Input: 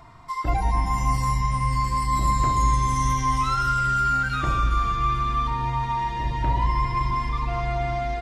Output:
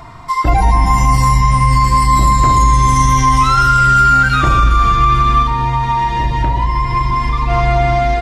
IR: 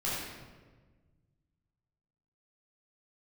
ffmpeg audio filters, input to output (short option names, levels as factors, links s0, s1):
-filter_complex "[0:a]asettb=1/sr,asplit=3[s0][s1][s2];[s0]atrim=end=5.424[s3];[s1]atrim=start=5.42:end=7.5,asetpts=PTS-STARTPTS,afade=t=in:d=0.004:c=qsin,afade=t=out:st=2.076:d=0.004:c=qsin,acompressor=threshold=0.0631:ratio=6[s4];[s2]atrim=start=7.496[s5];[s3][s4]acrossfade=d=0.004:c1=hsin:c2=qsin[s6];[s6][s5]acrossfade=d=0.004:c1=qsin:c2=hsin,alimiter=level_in=5.01:limit=0.891:release=50:level=0:latency=1,volume=0.891"